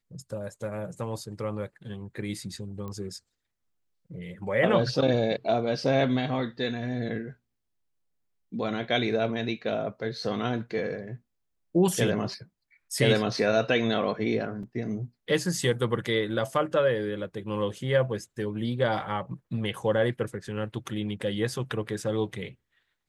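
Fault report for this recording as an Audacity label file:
2.880000	2.880000	click −26 dBFS
14.630000	14.630000	drop-out 3.5 ms

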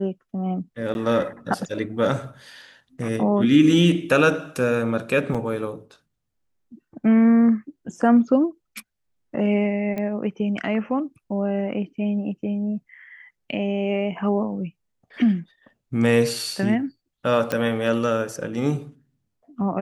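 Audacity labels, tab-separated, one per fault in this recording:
0.940000	0.950000	drop-out 11 ms
5.340000	5.350000	drop-out 5.9 ms
9.980000	9.980000	click −17 dBFS
17.520000	17.520000	click −10 dBFS

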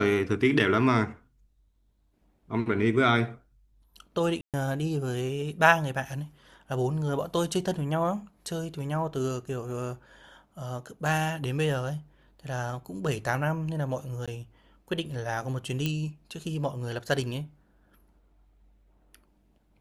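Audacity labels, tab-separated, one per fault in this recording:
4.410000	4.540000	drop-out 127 ms
14.260000	14.280000	drop-out 16 ms
15.860000	15.860000	click −15 dBFS

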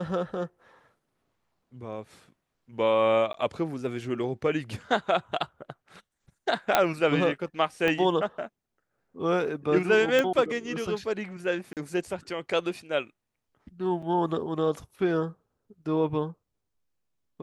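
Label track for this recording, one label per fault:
3.330000	3.340000	drop-out 13 ms
6.750000	6.750000	click −5 dBFS
7.880000	7.880000	click −14 dBFS
10.190000	10.190000	click −11 dBFS
11.730000	11.770000	drop-out 38 ms
14.020000	14.030000	drop-out 5.4 ms

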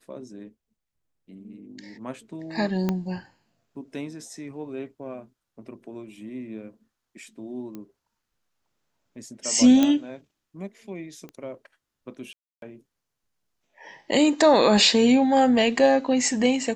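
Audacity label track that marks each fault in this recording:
2.890000	2.890000	click −12 dBFS
7.750000	7.750000	click −25 dBFS
9.830000	9.830000	click −9 dBFS
11.290000	11.290000	click −27 dBFS
12.330000	12.620000	drop-out 292 ms

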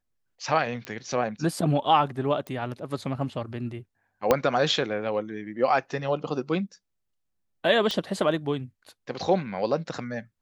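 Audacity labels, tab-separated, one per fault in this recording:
0.850000	0.850000	click −19 dBFS
2.470000	2.470000	click −22 dBFS
4.310000	4.310000	click −6 dBFS
7.910000	7.910000	click −15 dBFS

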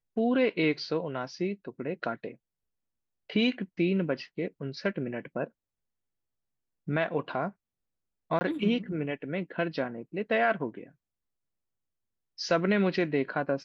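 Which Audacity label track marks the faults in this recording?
8.390000	8.410000	drop-out 20 ms

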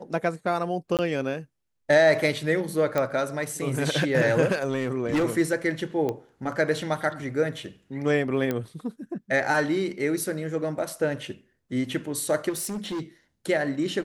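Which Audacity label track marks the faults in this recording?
0.970000	0.990000	drop-out 18 ms
2.980000	2.980000	click −12 dBFS
4.510000	5.250000	clipping −20 dBFS
6.090000	6.090000	click −17 dBFS
8.510000	8.510000	click −14 dBFS
12.490000	13.010000	clipping −27.5 dBFS

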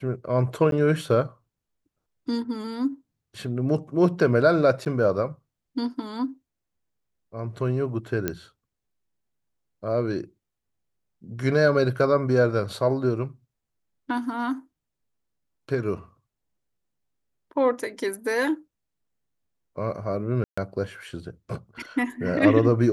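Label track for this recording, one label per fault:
0.710000	0.720000	drop-out
4.850000	4.860000	drop-out 9.8 ms
8.280000	8.280000	click −11 dBFS
20.440000	20.570000	drop-out 135 ms

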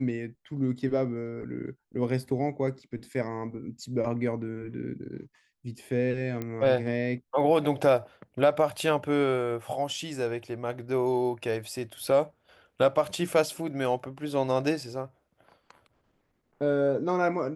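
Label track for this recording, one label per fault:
6.420000	6.420000	click −20 dBFS

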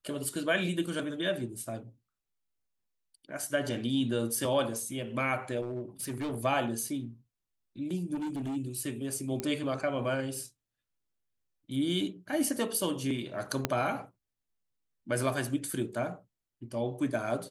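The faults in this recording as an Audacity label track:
5.620000	6.450000	clipping −31 dBFS
8.140000	8.570000	clipping −32 dBFS
9.400000	9.400000	click −18 dBFS
13.650000	13.650000	click −11 dBFS

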